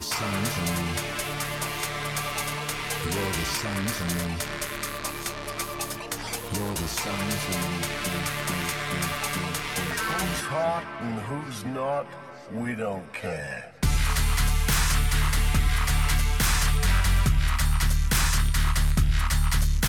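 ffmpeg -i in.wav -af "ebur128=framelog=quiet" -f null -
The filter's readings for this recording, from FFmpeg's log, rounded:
Integrated loudness:
  I:         -26.9 LUFS
  Threshold: -37.0 LUFS
Loudness range:
  LRA:         6.1 LU
  Threshold: -47.2 LUFS
  LRA low:   -30.1 LUFS
  LRA high:  -24.0 LUFS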